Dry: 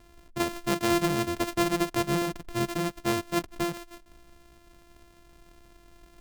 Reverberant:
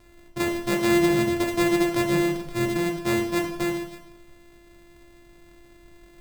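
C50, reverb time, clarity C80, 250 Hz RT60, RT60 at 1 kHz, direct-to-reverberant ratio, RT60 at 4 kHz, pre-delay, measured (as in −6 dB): 6.5 dB, 0.75 s, 9.0 dB, 0.85 s, 0.75 s, 1.0 dB, 0.70 s, 4 ms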